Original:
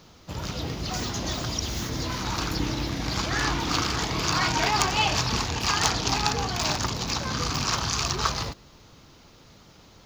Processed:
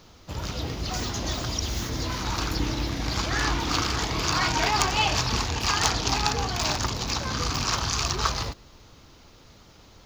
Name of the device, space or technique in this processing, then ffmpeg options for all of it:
low shelf boost with a cut just above: -af "lowshelf=f=74:g=6,equalizer=f=160:t=o:w=0.84:g=-4"

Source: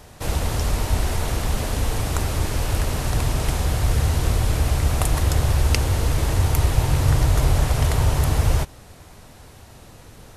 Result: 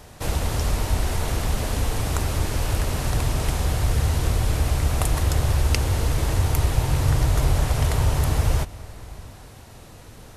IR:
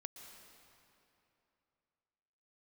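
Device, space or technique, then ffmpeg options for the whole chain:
ducked reverb: -filter_complex "[0:a]asplit=3[a][b][c];[1:a]atrim=start_sample=2205[d];[b][d]afir=irnorm=-1:irlink=0[e];[c]apad=whole_len=457286[f];[e][f]sidechaincompress=threshold=-20dB:ratio=8:attack=16:release=768,volume=-0.5dB[g];[a][g]amix=inputs=2:normalize=0,volume=-3.5dB"

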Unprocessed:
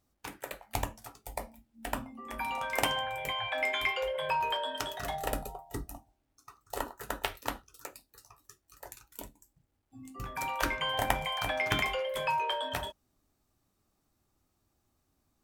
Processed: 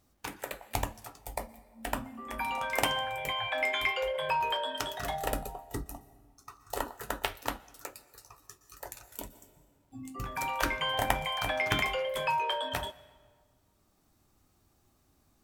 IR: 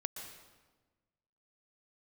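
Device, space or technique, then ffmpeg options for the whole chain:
ducked reverb: -filter_complex "[0:a]asplit=3[a][b][c];[1:a]atrim=start_sample=2205[d];[b][d]afir=irnorm=-1:irlink=0[e];[c]apad=whole_len=680474[f];[e][f]sidechaincompress=threshold=-49dB:ratio=8:attack=37:release=996,volume=3dB[g];[a][g]amix=inputs=2:normalize=0"

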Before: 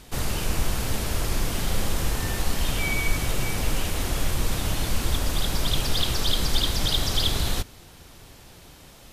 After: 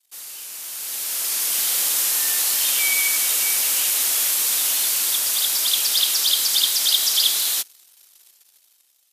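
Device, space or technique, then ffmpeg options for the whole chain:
voice memo with heavy noise removal: -af "aderivative,anlmdn=0.00251,dynaudnorm=f=260:g=9:m=16.5dB,highpass=230,volume=-1.5dB"

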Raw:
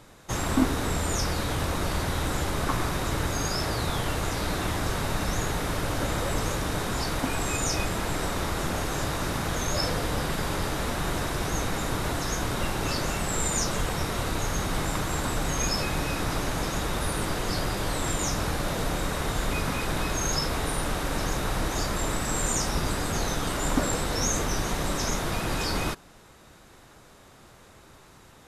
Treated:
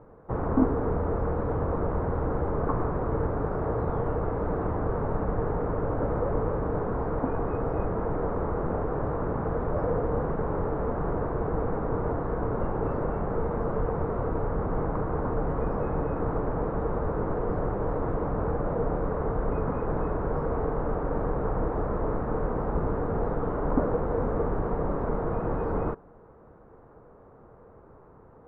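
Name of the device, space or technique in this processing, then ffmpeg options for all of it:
under water: -af "lowpass=f=1.2k:w=0.5412,lowpass=f=1.2k:w=1.3066,equalizer=f=460:t=o:w=0.29:g=9.5"

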